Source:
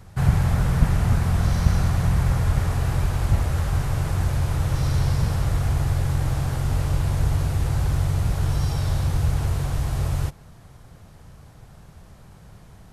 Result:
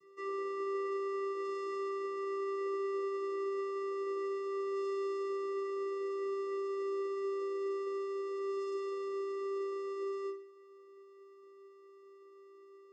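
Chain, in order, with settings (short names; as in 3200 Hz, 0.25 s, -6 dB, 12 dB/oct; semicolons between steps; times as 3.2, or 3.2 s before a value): bell 2800 Hz -13 dB 0.22 oct; vocoder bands 8, square 393 Hz; resonator bank E3 minor, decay 0.42 s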